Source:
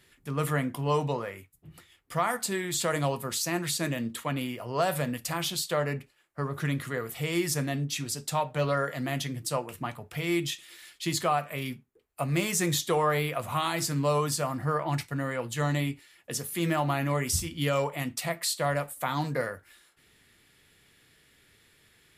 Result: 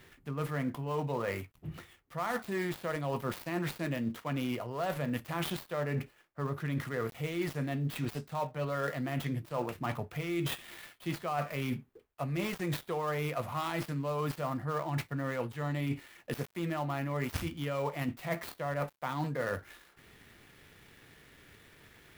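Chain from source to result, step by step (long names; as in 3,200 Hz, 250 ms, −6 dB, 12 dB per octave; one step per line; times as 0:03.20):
gap after every zero crossing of 0.09 ms
parametric band 7,700 Hz −8.5 dB 2.1 octaves
reversed playback
downward compressor 12 to 1, threshold −39 dBFS, peak gain reduction 18 dB
reversed playback
level +8.5 dB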